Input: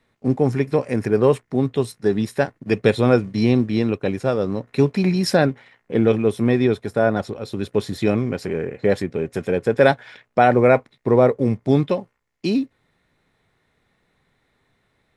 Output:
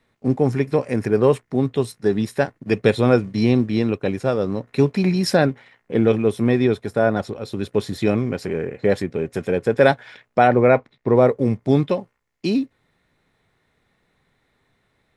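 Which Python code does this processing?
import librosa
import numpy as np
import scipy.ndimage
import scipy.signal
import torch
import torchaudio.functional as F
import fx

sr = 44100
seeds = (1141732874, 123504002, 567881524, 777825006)

y = fx.air_absorb(x, sr, metres=85.0, at=(10.47, 11.16))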